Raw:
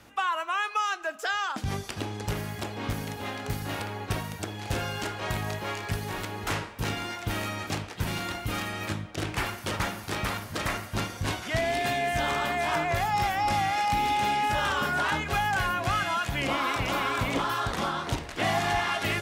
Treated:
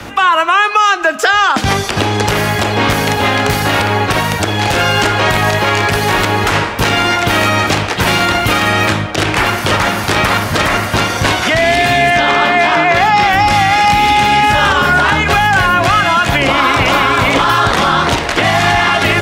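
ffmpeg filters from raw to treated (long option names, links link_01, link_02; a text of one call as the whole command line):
ffmpeg -i in.wav -filter_complex "[0:a]asettb=1/sr,asplit=3[link_01][link_02][link_03];[link_01]atrim=end=12.104[link_04];[link_02]atrim=start=12.1:end=13.33,asetpts=PTS-STARTPTS,afade=type=in:duration=0.004:curve=qsin,afade=type=out:start_time=1.226:duration=0.004:curve=qsin,acrossover=split=200 6000:gain=0.112 1 0.251[link_05][link_06][link_07];[link_05][link_06][link_07]amix=inputs=3:normalize=0[link_08];[link_03]atrim=start=13.326[link_09];[link_04][link_08]acrossfade=duration=0.004:curve1=hsin:curve2=qsin[link_10];[link_10][link_09]acrossfade=duration=0.004:curve1=qsin:curve2=hsin,highshelf=frequency=7000:gain=-9,acrossover=split=130|370|1200[link_11][link_12][link_13][link_14];[link_11]acompressor=threshold=-47dB:ratio=4[link_15];[link_12]acompressor=threshold=-48dB:ratio=4[link_16];[link_13]acompressor=threshold=-41dB:ratio=4[link_17];[link_14]acompressor=threshold=-38dB:ratio=4[link_18];[link_15][link_16][link_17][link_18]amix=inputs=4:normalize=0,alimiter=level_in=27dB:limit=-1dB:release=50:level=0:latency=1,volume=-1dB" out.wav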